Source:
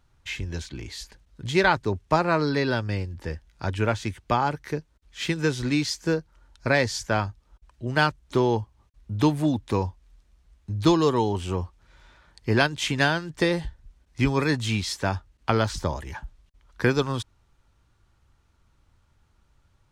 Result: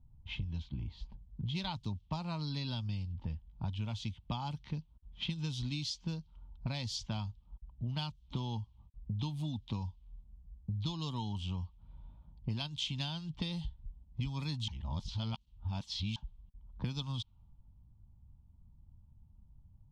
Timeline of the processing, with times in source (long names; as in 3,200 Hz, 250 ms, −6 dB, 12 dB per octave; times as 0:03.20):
0:14.68–0:16.16: reverse
whole clip: low-pass that shuts in the quiet parts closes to 540 Hz, open at −20.5 dBFS; drawn EQ curve 210 Hz 0 dB, 410 Hz −23 dB, 930 Hz −7 dB, 1,700 Hz −24 dB, 3,200 Hz +4 dB, 8,500 Hz −9 dB; downward compressor 6 to 1, threshold −40 dBFS; level +4.5 dB